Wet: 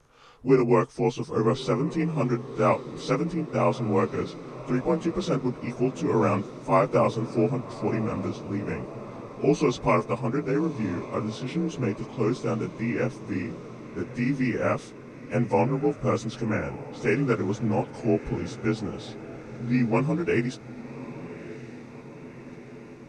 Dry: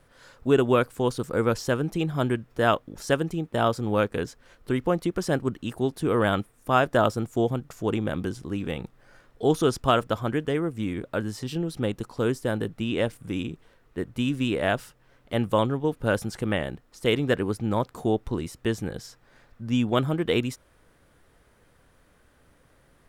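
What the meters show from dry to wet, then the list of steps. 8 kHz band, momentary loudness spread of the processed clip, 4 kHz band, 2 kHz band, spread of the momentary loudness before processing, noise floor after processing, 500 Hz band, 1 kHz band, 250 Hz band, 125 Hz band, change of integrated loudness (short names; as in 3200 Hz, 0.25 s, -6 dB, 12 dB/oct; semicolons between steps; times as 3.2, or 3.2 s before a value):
-3.0 dB, 16 LU, -7.5 dB, -2.5 dB, 9 LU, -44 dBFS, 0.0 dB, -0.5 dB, +1.0 dB, +0.5 dB, 0.0 dB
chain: inharmonic rescaling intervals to 88%; diffused feedback echo 1.158 s, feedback 65%, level -15 dB; gain +1.5 dB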